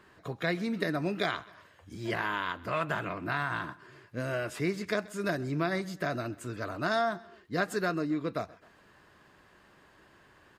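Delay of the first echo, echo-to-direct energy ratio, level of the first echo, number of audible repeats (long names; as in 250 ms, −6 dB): 130 ms, −21.0 dB, −22.0 dB, 2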